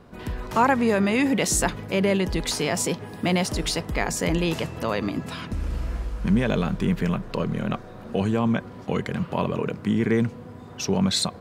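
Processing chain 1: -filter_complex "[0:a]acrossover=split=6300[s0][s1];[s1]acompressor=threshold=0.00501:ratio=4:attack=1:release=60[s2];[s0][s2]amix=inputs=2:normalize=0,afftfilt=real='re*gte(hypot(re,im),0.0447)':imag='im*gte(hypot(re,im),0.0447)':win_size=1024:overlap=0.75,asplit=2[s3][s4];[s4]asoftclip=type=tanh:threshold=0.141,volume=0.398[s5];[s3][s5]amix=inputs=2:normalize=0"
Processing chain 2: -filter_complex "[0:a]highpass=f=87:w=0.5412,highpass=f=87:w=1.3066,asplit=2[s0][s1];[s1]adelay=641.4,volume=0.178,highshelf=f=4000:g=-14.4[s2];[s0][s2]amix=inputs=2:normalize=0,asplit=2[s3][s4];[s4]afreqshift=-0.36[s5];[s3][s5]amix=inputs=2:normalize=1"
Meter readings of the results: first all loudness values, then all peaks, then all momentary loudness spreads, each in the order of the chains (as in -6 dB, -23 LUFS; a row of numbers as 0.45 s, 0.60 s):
-23.0 LUFS, -27.5 LUFS; -5.5 dBFS, -11.0 dBFS; 10 LU, 13 LU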